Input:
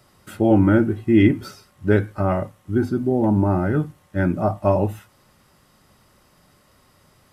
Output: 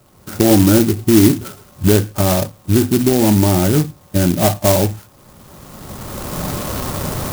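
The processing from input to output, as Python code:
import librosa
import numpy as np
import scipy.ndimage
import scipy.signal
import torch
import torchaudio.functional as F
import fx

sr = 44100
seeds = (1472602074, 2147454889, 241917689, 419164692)

p1 = fx.recorder_agc(x, sr, target_db=-9.0, rise_db_per_s=19.0, max_gain_db=30)
p2 = scipy.signal.sosfilt(scipy.signal.butter(2, 2200.0, 'lowpass', fs=sr, output='sos'), p1)
p3 = fx.fold_sine(p2, sr, drive_db=5, ceiling_db=-2.0)
p4 = p2 + (p3 * 10.0 ** (-10.5 / 20.0))
y = fx.clock_jitter(p4, sr, seeds[0], jitter_ms=0.13)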